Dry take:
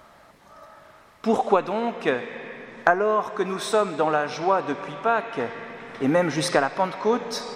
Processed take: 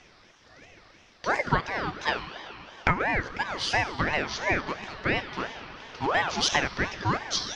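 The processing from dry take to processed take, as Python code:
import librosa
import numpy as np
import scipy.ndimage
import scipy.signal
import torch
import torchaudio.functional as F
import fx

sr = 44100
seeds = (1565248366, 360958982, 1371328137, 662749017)

y = fx.lowpass_res(x, sr, hz=4600.0, q=5.7)
y = fx.ring_lfo(y, sr, carrier_hz=950.0, swing_pct=45, hz=2.9)
y = y * 10.0 ** (-2.5 / 20.0)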